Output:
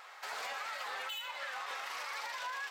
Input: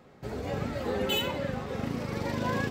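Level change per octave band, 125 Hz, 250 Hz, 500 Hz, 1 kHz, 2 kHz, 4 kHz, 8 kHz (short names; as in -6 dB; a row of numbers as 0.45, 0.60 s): under -40 dB, under -35 dB, -18.5 dB, -3.5 dB, -1.5 dB, -7.0 dB, -2.5 dB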